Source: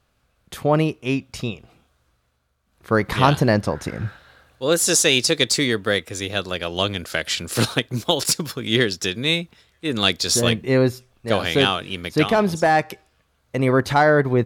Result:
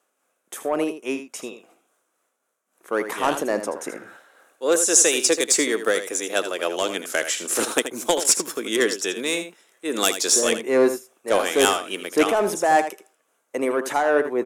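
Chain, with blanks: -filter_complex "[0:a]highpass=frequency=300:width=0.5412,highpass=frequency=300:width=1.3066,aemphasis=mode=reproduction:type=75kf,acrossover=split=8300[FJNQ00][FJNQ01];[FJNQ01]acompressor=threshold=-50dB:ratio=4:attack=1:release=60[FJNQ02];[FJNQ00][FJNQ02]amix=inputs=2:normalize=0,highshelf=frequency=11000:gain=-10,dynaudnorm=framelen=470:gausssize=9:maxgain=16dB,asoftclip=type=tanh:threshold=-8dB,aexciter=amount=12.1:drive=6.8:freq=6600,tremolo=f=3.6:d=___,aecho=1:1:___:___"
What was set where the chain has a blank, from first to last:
0.41, 80, 0.299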